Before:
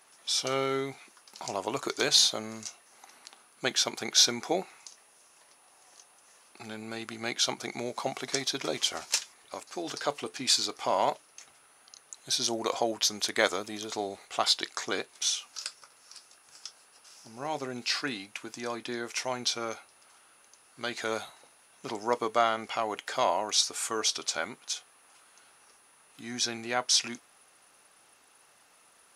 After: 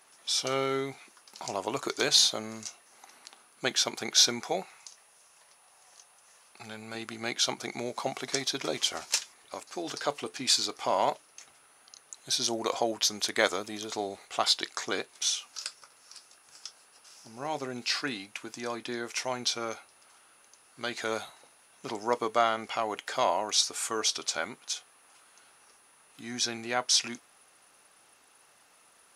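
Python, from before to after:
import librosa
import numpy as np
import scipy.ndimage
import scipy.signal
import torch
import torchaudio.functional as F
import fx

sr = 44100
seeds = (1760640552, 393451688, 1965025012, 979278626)

y = fx.peak_eq(x, sr, hz=300.0, db=-9.0, octaves=0.77, at=(4.41, 6.95))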